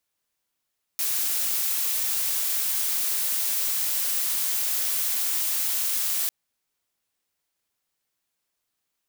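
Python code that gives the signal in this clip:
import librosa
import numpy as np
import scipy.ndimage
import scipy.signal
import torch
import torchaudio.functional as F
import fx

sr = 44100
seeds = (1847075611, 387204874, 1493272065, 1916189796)

y = fx.noise_colour(sr, seeds[0], length_s=5.3, colour='blue', level_db=-25.5)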